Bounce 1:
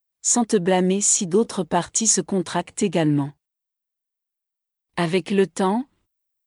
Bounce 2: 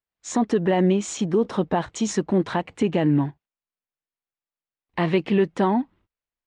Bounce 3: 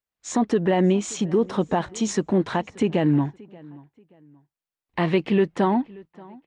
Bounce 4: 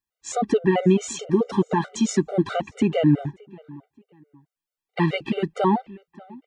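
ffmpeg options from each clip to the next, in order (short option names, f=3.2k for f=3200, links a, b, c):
-af "lowpass=2.7k,alimiter=limit=-13.5dB:level=0:latency=1:release=100,volume=2dB"
-filter_complex "[0:a]asplit=2[a][b];[b]adelay=580,lowpass=f=3.9k:p=1,volume=-23dB,asplit=2[c][d];[d]adelay=580,lowpass=f=3.9k:p=1,volume=0.32[e];[a][c][e]amix=inputs=3:normalize=0"
-af "afftfilt=real='re*gt(sin(2*PI*4.6*pts/sr)*(1-2*mod(floor(b*sr/1024/390),2)),0)':imag='im*gt(sin(2*PI*4.6*pts/sr)*(1-2*mod(floor(b*sr/1024/390),2)),0)':win_size=1024:overlap=0.75,volume=3.5dB"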